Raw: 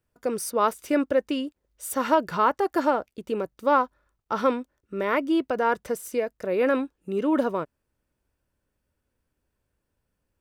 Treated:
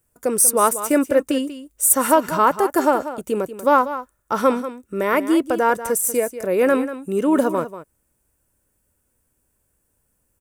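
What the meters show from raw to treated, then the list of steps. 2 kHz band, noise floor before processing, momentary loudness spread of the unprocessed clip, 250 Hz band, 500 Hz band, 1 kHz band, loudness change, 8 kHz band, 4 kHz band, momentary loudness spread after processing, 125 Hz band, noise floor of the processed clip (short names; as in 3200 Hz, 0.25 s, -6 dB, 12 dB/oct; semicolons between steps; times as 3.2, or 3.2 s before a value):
+5.0 dB, -80 dBFS, 9 LU, +6.0 dB, +5.5 dB, +5.5 dB, +6.5 dB, +19.0 dB, +4.0 dB, 10 LU, +6.0 dB, -70 dBFS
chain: resonant high shelf 6100 Hz +11.5 dB, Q 1.5; echo 0.189 s -12.5 dB; gain +5.5 dB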